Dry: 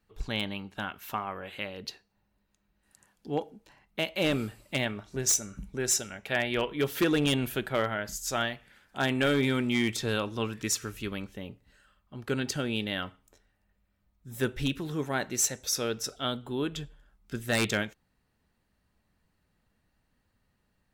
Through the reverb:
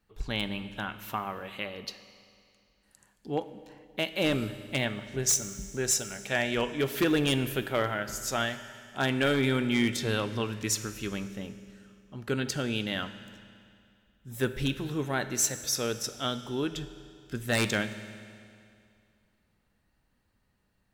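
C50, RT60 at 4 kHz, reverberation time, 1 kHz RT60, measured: 12.5 dB, 2.3 s, 2.4 s, 2.4 s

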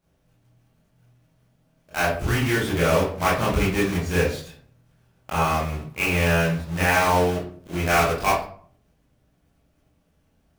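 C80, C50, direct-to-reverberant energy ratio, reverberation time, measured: 8.0 dB, 3.0 dB, −9.0 dB, 0.50 s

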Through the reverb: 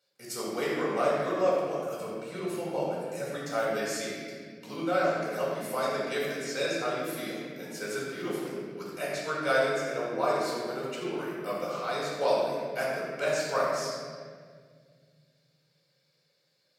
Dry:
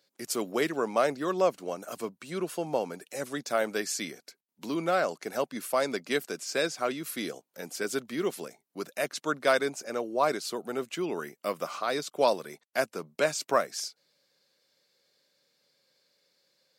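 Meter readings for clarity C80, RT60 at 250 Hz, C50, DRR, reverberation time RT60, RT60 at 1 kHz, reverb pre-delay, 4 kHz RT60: 0.5 dB, 3.3 s, −1.5 dB, −6.5 dB, 1.8 s, 1.6 s, 4 ms, 1.3 s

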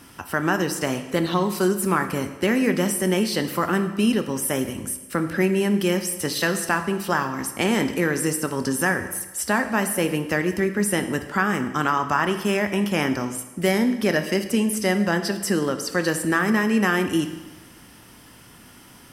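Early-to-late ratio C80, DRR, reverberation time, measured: 12.0 dB, 8.0 dB, 1.1 s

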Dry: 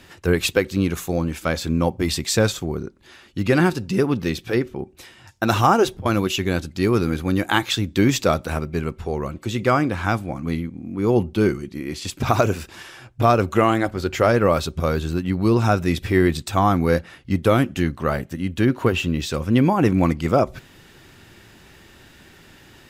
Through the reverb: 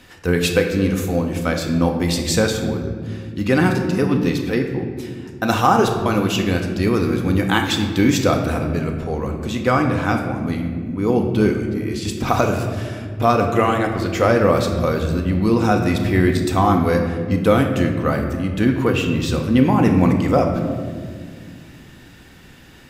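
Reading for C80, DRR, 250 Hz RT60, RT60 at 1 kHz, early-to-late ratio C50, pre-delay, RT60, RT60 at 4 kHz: 7.5 dB, 3.0 dB, 3.5 s, 1.6 s, 6.0 dB, 4 ms, 2.0 s, 1.0 s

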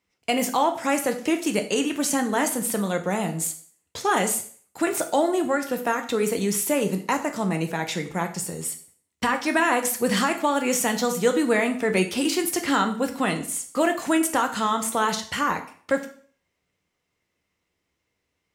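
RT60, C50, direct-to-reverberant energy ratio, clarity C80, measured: 0.50 s, 12.0 dB, 5.5 dB, 15.5 dB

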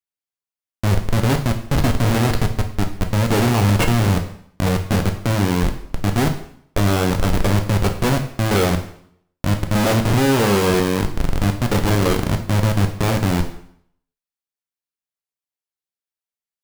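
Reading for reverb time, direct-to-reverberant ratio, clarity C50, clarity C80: 0.65 s, 4.5 dB, 10.0 dB, 13.0 dB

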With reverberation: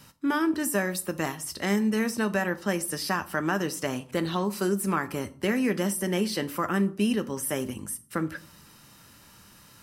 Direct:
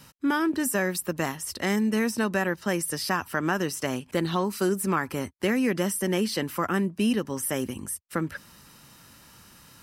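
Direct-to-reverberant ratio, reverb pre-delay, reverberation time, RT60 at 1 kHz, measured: 10.5 dB, 5 ms, 0.45 s, 0.45 s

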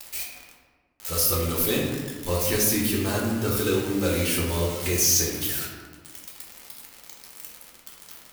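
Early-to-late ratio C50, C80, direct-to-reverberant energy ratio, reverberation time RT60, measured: 1.5 dB, 4.0 dB, −4.0 dB, 1.4 s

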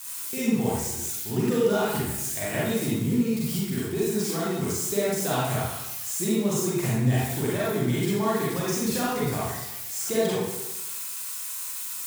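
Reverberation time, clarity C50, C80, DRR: 0.95 s, −3.0 dB, 2.0 dB, −7.5 dB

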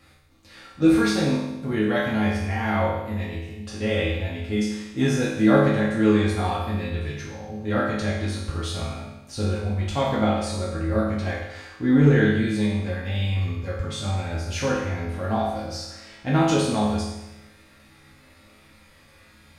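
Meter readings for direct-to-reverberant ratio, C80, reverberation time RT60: −7.0 dB, 4.5 dB, 0.95 s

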